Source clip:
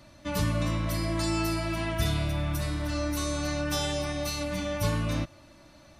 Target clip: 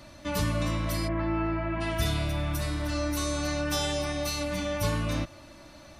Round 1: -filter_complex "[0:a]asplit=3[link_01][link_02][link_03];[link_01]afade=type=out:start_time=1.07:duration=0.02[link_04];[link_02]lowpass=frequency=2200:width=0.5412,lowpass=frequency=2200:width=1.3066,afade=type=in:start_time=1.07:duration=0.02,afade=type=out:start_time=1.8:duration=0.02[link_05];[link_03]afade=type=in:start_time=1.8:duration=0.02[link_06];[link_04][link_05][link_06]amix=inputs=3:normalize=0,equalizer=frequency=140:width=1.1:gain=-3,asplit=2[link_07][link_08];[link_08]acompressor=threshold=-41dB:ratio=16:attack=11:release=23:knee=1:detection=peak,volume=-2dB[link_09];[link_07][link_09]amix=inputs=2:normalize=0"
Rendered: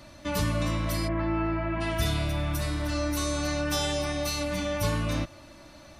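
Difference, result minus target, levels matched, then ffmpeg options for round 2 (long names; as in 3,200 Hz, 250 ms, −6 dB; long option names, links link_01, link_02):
downward compressor: peak gain reduction −5.5 dB
-filter_complex "[0:a]asplit=3[link_01][link_02][link_03];[link_01]afade=type=out:start_time=1.07:duration=0.02[link_04];[link_02]lowpass=frequency=2200:width=0.5412,lowpass=frequency=2200:width=1.3066,afade=type=in:start_time=1.07:duration=0.02,afade=type=out:start_time=1.8:duration=0.02[link_05];[link_03]afade=type=in:start_time=1.8:duration=0.02[link_06];[link_04][link_05][link_06]amix=inputs=3:normalize=0,equalizer=frequency=140:width=1.1:gain=-3,asplit=2[link_07][link_08];[link_08]acompressor=threshold=-47dB:ratio=16:attack=11:release=23:knee=1:detection=peak,volume=-2dB[link_09];[link_07][link_09]amix=inputs=2:normalize=0"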